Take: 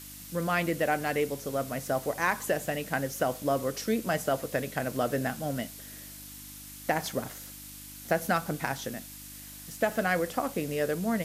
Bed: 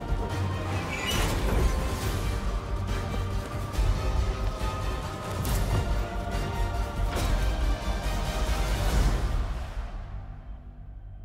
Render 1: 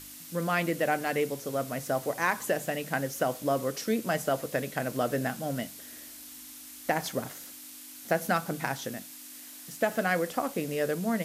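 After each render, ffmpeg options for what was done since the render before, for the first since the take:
ffmpeg -i in.wav -af "bandreject=frequency=50:width_type=h:width=4,bandreject=frequency=100:width_type=h:width=4,bandreject=frequency=150:width_type=h:width=4,bandreject=frequency=200:width_type=h:width=4" out.wav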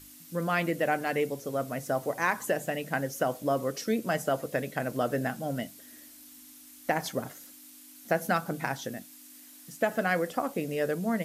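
ffmpeg -i in.wav -af "afftdn=noise_reduction=7:noise_floor=-46" out.wav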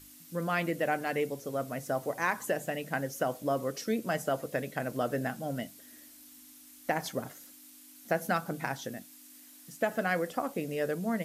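ffmpeg -i in.wav -af "volume=-2.5dB" out.wav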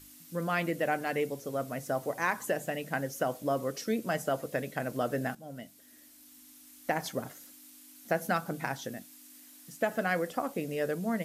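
ffmpeg -i in.wav -filter_complex "[0:a]asplit=2[link_01][link_02];[link_01]atrim=end=5.35,asetpts=PTS-STARTPTS,afade=type=out:start_time=5.346:duration=0.004:curve=hsin:silence=0.251189[link_03];[link_02]atrim=start=5.35,asetpts=PTS-STARTPTS,afade=type=in:duration=1.82:curve=qsin:silence=0.251189[link_04];[link_03][link_04]concat=n=2:v=0:a=1" out.wav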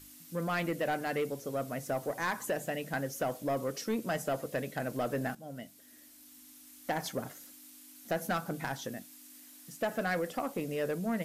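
ffmpeg -i in.wav -af "asoftclip=type=tanh:threshold=-24.5dB" out.wav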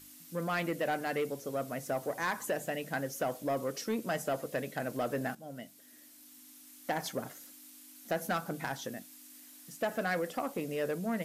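ffmpeg -i in.wav -af "lowshelf=frequency=80:gain=-10.5" out.wav

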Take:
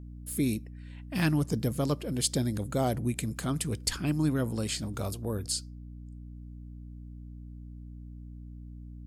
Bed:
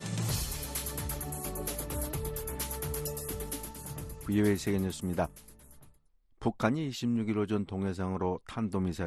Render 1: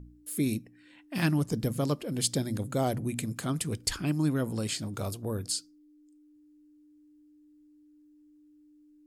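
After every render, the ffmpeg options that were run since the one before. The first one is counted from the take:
ffmpeg -i in.wav -af "bandreject=frequency=60:width_type=h:width=4,bandreject=frequency=120:width_type=h:width=4,bandreject=frequency=180:width_type=h:width=4,bandreject=frequency=240:width_type=h:width=4" out.wav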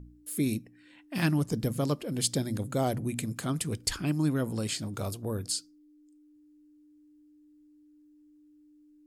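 ffmpeg -i in.wav -af anull out.wav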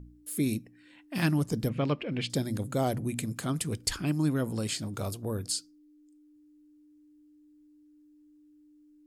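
ffmpeg -i in.wav -filter_complex "[0:a]asettb=1/sr,asplit=3[link_01][link_02][link_03];[link_01]atrim=end=1.694[link_04];[link_02]atrim=start=1.69:end=2.3,asetpts=PTS-STARTPTS,afade=type=in:duration=0.004:curve=qsin,afade=type=out:start_time=0.606:duration=0.004:curve=qsin,lowpass=frequency=2500:width_type=q:width=3.6[link_05];[link_03]atrim=start=2.296[link_06];[link_04][link_05]acrossfade=duration=0.004:curve1=hsin:curve2=qsin[link_07];[link_07][link_06]acrossfade=duration=0.004:curve1=qsin:curve2=hsin" out.wav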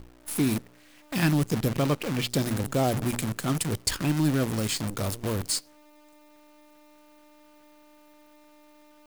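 ffmpeg -i in.wav -filter_complex "[0:a]asplit=2[link_01][link_02];[link_02]volume=23.5dB,asoftclip=hard,volume=-23.5dB,volume=-5dB[link_03];[link_01][link_03]amix=inputs=2:normalize=0,acrusher=bits=6:dc=4:mix=0:aa=0.000001" out.wav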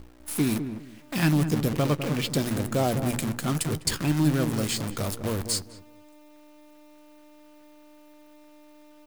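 ffmpeg -i in.wav -filter_complex "[0:a]asplit=2[link_01][link_02];[link_02]adelay=13,volume=-14dB[link_03];[link_01][link_03]amix=inputs=2:normalize=0,asplit=2[link_04][link_05];[link_05]adelay=203,lowpass=frequency=860:poles=1,volume=-8dB,asplit=2[link_06][link_07];[link_07]adelay=203,lowpass=frequency=860:poles=1,volume=0.23,asplit=2[link_08][link_09];[link_09]adelay=203,lowpass=frequency=860:poles=1,volume=0.23[link_10];[link_04][link_06][link_08][link_10]amix=inputs=4:normalize=0" out.wav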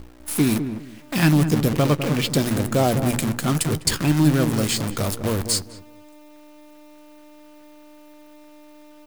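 ffmpeg -i in.wav -af "volume=5.5dB" out.wav

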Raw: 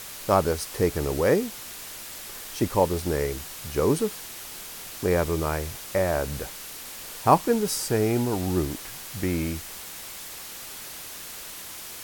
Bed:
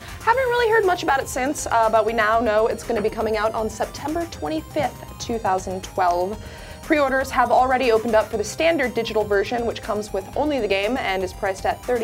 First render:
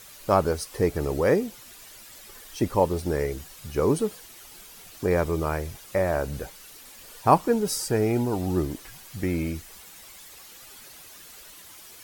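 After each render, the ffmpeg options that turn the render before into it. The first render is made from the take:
ffmpeg -i in.wav -af "afftdn=noise_reduction=10:noise_floor=-40" out.wav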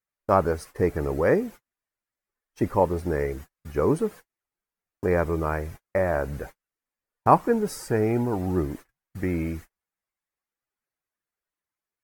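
ffmpeg -i in.wav -af "agate=range=-41dB:threshold=-38dB:ratio=16:detection=peak,highshelf=frequency=2500:width_type=q:width=1.5:gain=-8" out.wav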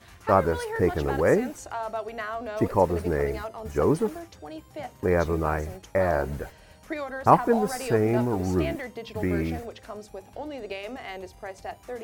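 ffmpeg -i in.wav -i bed.wav -filter_complex "[1:a]volume=-14.5dB[link_01];[0:a][link_01]amix=inputs=2:normalize=0" out.wav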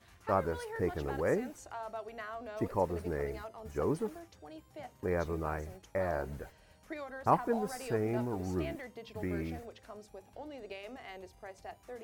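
ffmpeg -i in.wav -af "volume=-10dB" out.wav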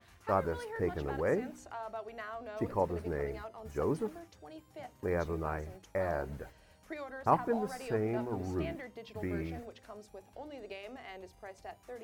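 ffmpeg -i in.wav -af "bandreject=frequency=60.95:width_type=h:width=4,bandreject=frequency=121.9:width_type=h:width=4,bandreject=frequency=182.85:width_type=h:width=4,bandreject=frequency=243.8:width_type=h:width=4,bandreject=frequency=304.75:width_type=h:width=4,adynamicequalizer=threshold=0.00112:dfrequency=5000:dqfactor=0.7:tfrequency=5000:tqfactor=0.7:attack=5:release=100:ratio=0.375:range=3.5:mode=cutabove:tftype=highshelf" out.wav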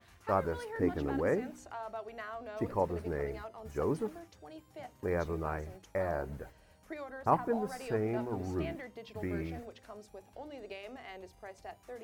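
ffmpeg -i in.wav -filter_complex "[0:a]asettb=1/sr,asplit=3[link_01][link_02][link_03];[link_01]atrim=end=0.744[link_04];[link_02]atrim=start=0.74:end=1.29,asetpts=PTS-STARTPTS,afade=type=in:duration=0.004:curve=qsin,afade=type=out:start_time=0.546:duration=0.004:curve=qsin,equalizer=frequency=270:width=5.2:gain=13.5[link_05];[link_03]atrim=start=1.286[link_06];[link_04][link_05]acrossfade=duration=0.004:curve1=hsin:curve2=qsin[link_07];[link_07][link_06]acrossfade=duration=0.004:curve1=qsin:curve2=hsin,asettb=1/sr,asplit=3[link_08][link_09][link_10];[link_08]atrim=end=6.024[link_11];[link_09]atrim=start=6.02:end=7.72,asetpts=PTS-STARTPTS,afade=type=in:duration=0.004:curve=qsin,afade=type=out:start_time=1.696:duration=0.004:curve=qsin,equalizer=frequency=3700:width_type=o:width=2.3:gain=-3[link_12];[link_10]atrim=start=7.716[link_13];[link_11][link_12]acrossfade=duration=0.004:curve1=hsin:curve2=qsin[link_14];[link_14][link_13]acrossfade=duration=0.004:curve1=qsin:curve2=hsin" out.wav

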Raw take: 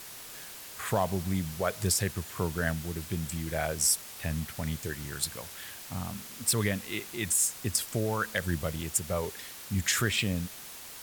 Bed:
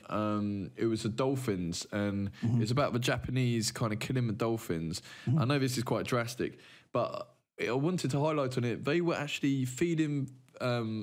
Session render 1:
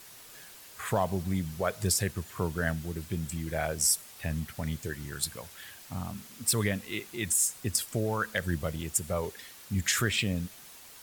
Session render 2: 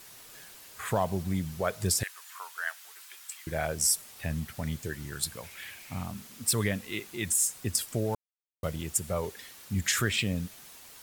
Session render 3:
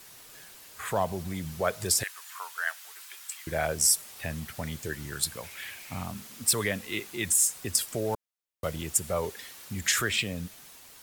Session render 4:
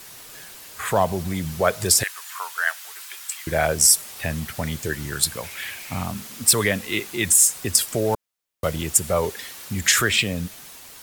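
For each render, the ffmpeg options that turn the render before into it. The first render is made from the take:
ffmpeg -i in.wav -af "afftdn=noise_reduction=6:noise_floor=-45" out.wav
ffmpeg -i in.wav -filter_complex "[0:a]asettb=1/sr,asplit=3[link_01][link_02][link_03];[link_01]atrim=end=2.034[link_04];[link_02]atrim=start=2.03:end=3.47,asetpts=PTS-STARTPTS,afade=type=in:duration=0.004:curve=qsin,afade=type=out:start_time=1.436:duration=0.004:curve=qsin,highpass=frequency=970:width=0.5412,highpass=frequency=970:width=1.3066[link_05];[link_03]atrim=start=3.466[link_06];[link_04][link_05]acrossfade=duration=0.004:curve1=hsin:curve2=qsin[link_07];[link_07][link_06]acrossfade=duration=0.004:curve1=qsin:curve2=hsin,asettb=1/sr,asplit=3[link_08][link_09][link_10];[link_08]atrim=end=5.434[link_11];[link_09]atrim=start=5.43:end=6.05,asetpts=PTS-STARTPTS,afade=type=in:duration=0.004:curve=qsin,afade=type=out:start_time=0.616:duration=0.004:curve=qsin,equalizer=frequency=2300:width_type=o:width=0.42:gain=12.5[link_12];[link_10]atrim=start=6.046[link_13];[link_11][link_12]acrossfade=duration=0.004:curve1=hsin:curve2=qsin[link_14];[link_14][link_13]acrossfade=duration=0.004:curve1=qsin:curve2=hsin,asplit=3[link_15][link_16][link_17];[link_15]atrim=end=8.15,asetpts=PTS-STARTPTS,afade=type=out:start_time=8.146:duration=0.004:curve=hsin[link_18];[link_16]atrim=start=8.15:end=8.63,asetpts=PTS-STARTPTS,volume=0[link_19];[link_17]atrim=start=8.63,asetpts=PTS-STARTPTS,afade=type=in:duration=0.004:curve=hsin[link_20];[link_18][link_19][link_20]concat=n=3:v=0:a=1" out.wav
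ffmpeg -i in.wav -filter_complex "[0:a]acrossover=split=330[link_01][link_02];[link_01]alimiter=level_in=6dB:limit=-24dB:level=0:latency=1,volume=-6dB[link_03];[link_02]dynaudnorm=framelen=360:gausssize=7:maxgain=3dB[link_04];[link_03][link_04]amix=inputs=2:normalize=0" out.wav
ffmpeg -i in.wav -af "volume=8dB,alimiter=limit=-2dB:level=0:latency=1" out.wav

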